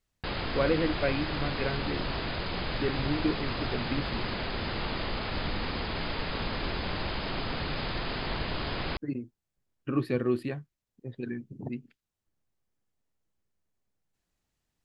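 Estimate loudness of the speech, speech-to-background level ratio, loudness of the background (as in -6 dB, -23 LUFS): -33.0 LUFS, 0.5 dB, -33.5 LUFS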